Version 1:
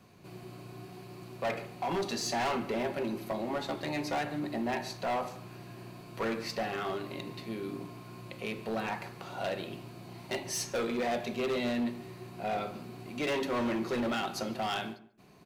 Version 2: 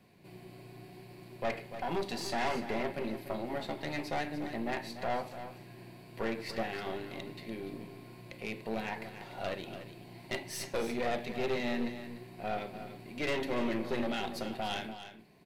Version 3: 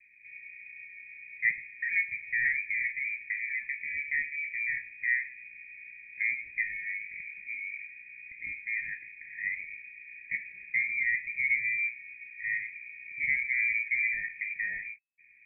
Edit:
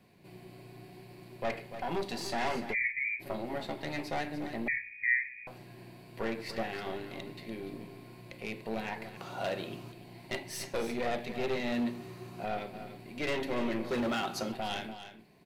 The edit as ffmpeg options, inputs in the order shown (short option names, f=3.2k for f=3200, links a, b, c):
-filter_complex "[2:a]asplit=2[a][b];[0:a]asplit=3[c][d][e];[1:a]asplit=6[f][g][h][i][j][k];[f]atrim=end=2.75[l];[a]atrim=start=2.71:end=3.23[m];[g]atrim=start=3.19:end=4.682[n];[b]atrim=start=4.678:end=5.472[o];[h]atrim=start=5.468:end=9.172[p];[c]atrim=start=9.168:end=9.922[q];[i]atrim=start=9.918:end=11.722[r];[d]atrim=start=11.718:end=12.452[s];[j]atrim=start=12.448:end=13.912[t];[e]atrim=start=13.908:end=14.522[u];[k]atrim=start=14.518[v];[l][m]acrossfade=d=0.04:c1=tri:c2=tri[w];[w][n]acrossfade=d=0.04:c1=tri:c2=tri[x];[x][o]acrossfade=d=0.004:c1=hsin:c2=hsin[y];[y][p]acrossfade=d=0.004:c1=hsin:c2=hsin[z];[z][q]acrossfade=d=0.004:c1=hsin:c2=hsin[aa];[aa][r]acrossfade=d=0.004:c1=hsin:c2=hsin[ab];[ab][s]acrossfade=d=0.004:c1=hsin:c2=hsin[ac];[ac][t]acrossfade=d=0.004:c1=hsin:c2=hsin[ad];[ad][u]acrossfade=d=0.004:c1=hsin:c2=hsin[ae];[ae][v]acrossfade=d=0.004:c1=hsin:c2=hsin"